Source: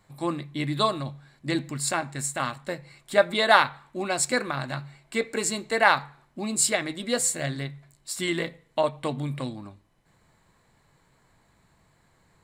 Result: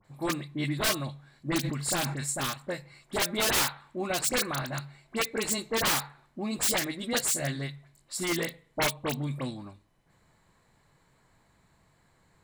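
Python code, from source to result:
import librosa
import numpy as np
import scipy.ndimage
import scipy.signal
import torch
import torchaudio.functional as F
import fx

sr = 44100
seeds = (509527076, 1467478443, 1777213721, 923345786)

y = (np.mod(10.0 ** (17.5 / 20.0) * x + 1.0, 2.0) - 1.0) / 10.0 ** (17.5 / 20.0)
y = fx.dispersion(y, sr, late='highs', ms=47.0, hz=2200.0)
y = fx.sustainer(y, sr, db_per_s=42.0, at=(1.63, 2.27), fade=0.02)
y = y * librosa.db_to_amplitude(-2.0)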